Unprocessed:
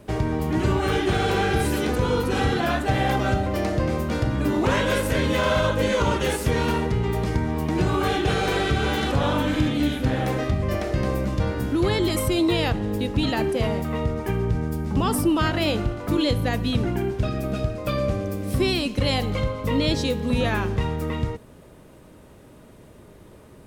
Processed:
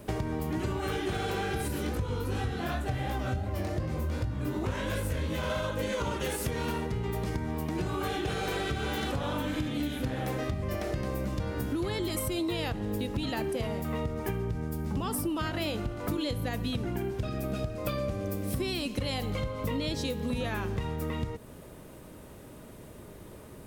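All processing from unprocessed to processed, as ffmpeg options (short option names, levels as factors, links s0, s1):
-filter_complex "[0:a]asettb=1/sr,asplit=3[s0][s1][s2];[s0]atrim=end=1.684[s3];[s1]atrim=start=1.68:end=5.5,asetpts=PTS-STARTPTS,afade=t=in:d=0.004:c=qsin,afade=t=out:st=3.816:d=0.004:c=qsin,equalizer=f=78:w=1.1:g=11,flanger=delay=18:depth=5.7:speed=2.7[s4];[s2]atrim=start=5.496[s5];[s3][s4]acrossfade=d=0.004:c1=hsin:c2=qsin[s6];[s6][s5]acrossfade=d=0.004:c1=qsin:c2=hsin,highshelf=f=11000:g=10.5,acompressor=threshold=0.0355:ratio=6"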